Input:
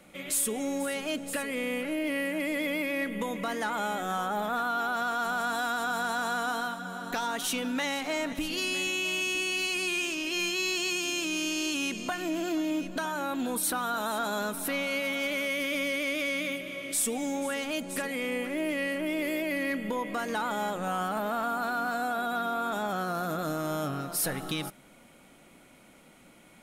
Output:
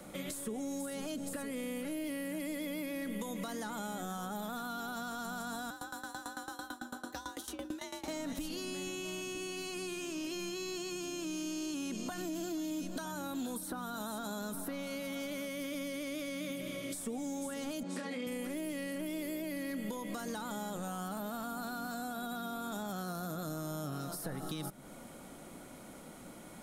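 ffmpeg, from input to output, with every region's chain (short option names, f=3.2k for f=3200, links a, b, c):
-filter_complex "[0:a]asettb=1/sr,asplit=3[a][b][c];[a]atrim=end=5.704[d];[b]atrim=start=5.7:end=8.08,asetpts=PTS-STARTPTS,afade=t=in:d=0.004:c=qsin,afade=t=out:st=2.376:d=0.004:c=qsin,afreqshift=59,aeval=exprs='val(0)*pow(10,-24*if(lt(mod(9*n/s,1),2*abs(9)/1000),1-mod(9*n/s,1)/(2*abs(9)/1000),(mod(9*n/s,1)-2*abs(9)/1000)/(1-2*abs(9)/1000))/20)':c=same[e];[c]atrim=start=8.076[f];[d][e]acrossfade=d=0.004:c1=hsin:c2=qsin[g];[g][f]acrossfade=d=0.004:c1=qsin:c2=hsin,asettb=1/sr,asplit=3[h][i][j];[h]atrim=end=17.834[k];[i]atrim=start=17.83:end=18.27,asetpts=PTS-STARTPTS,afade=t=in:d=0.004:c=qsin,afade=t=out:st=0.436:d=0.004:c=qsin,highpass=190,lowpass=4k,asplit=2[l][m];[m]adelay=28,volume=-3dB[n];[l][n]amix=inputs=2:normalize=0,atrim=end_sample=19404[o];[j]atrim=start=18.266[p];[k][o]acrossfade=d=0.004:c1=hsin:c2=qsin[q];[q][p]acrossfade=d=0.004:c1=qsin:c2=hsin,alimiter=level_in=3.5dB:limit=-24dB:level=0:latency=1,volume=-3.5dB,equalizer=f=2.5k:t=o:w=0.97:g=-10,acrossover=split=230|2700[r][s][t];[r]acompressor=threshold=-49dB:ratio=4[u];[s]acompressor=threshold=-50dB:ratio=4[v];[t]acompressor=threshold=-53dB:ratio=4[w];[u][v][w]amix=inputs=3:normalize=0,volume=6.5dB"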